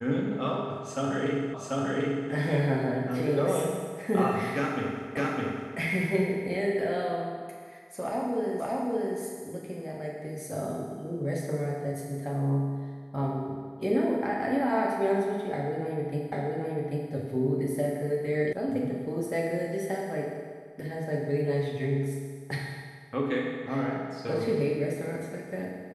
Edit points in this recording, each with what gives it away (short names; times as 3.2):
1.54 repeat of the last 0.74 s
5.17 repeat of the last 0.61 s
8.6 repeat of the last 0.57 s
16.32 repeat of the last 0.79 s
18.53 sound cut off